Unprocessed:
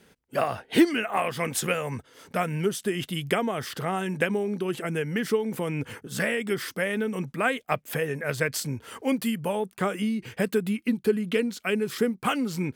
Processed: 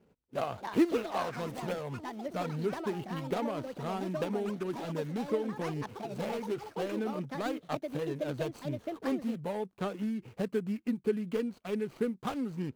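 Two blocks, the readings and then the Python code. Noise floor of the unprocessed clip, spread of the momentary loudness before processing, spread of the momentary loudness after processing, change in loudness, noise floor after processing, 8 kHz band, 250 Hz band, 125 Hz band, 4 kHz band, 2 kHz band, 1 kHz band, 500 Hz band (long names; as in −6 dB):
−61 dBFS, 5 LU, 5 LU, −7.0 dB, −66 dBFS, −17.0 dB, −6.0 dB, −6.5 dB, −12.0 dB, −14.5 dB, −7.0 dB, −6.0 dB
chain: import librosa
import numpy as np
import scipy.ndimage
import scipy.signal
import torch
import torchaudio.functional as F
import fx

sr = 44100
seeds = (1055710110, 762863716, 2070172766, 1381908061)

y = scipy.ndimage.median_filter(x, 25, mode='constant')
y = fx.echo_pitch(y, sr, ms=379, semitones=6, count=2, db_per_echo=-6.0)
y = y * librosa.db_to_amplitude(-6.5)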